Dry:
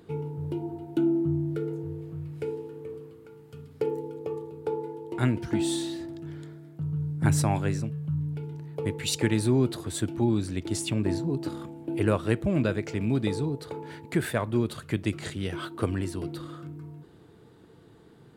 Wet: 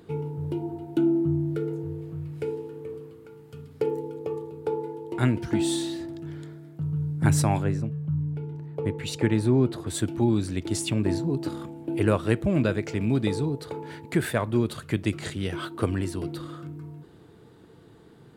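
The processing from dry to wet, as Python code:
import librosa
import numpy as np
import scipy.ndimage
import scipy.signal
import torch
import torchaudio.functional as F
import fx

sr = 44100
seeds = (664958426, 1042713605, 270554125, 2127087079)

y = fx.high_shelf(x, sr, hz=fx.line((7.62, 2100.0), (9.86, 3500.0)), db=-11.0, at=(7.62, 9.86), fade=0.02)
y = F.gain(torch.from_numpy(y), 2.0).numpy()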